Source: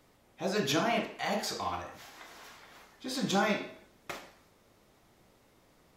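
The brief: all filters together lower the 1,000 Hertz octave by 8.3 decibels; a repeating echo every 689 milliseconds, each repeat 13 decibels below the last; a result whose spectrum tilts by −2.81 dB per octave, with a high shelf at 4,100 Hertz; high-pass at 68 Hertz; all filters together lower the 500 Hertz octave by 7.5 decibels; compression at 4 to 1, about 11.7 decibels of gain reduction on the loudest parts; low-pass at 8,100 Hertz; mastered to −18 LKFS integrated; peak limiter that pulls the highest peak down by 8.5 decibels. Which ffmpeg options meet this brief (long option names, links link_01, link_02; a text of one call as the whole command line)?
ffmpeg -i in.wav -af "highpass=68,lowpass=8100,equalizer=frequency=500:width_type=o:gain=-7.5,equalizer=frequency=1000:width_type=o:gain=-9,highshelf=frequency=4100:gain=7.5,acompressor=threshold=-41dB:ratio=4,alimiter=level_in=12dB:limit=-24dB:level=0:latency=1,volume=-12dB,aecho=1:1:689|1378|2067:0.224|0.0493|0.0108,volume=29dB" out.wav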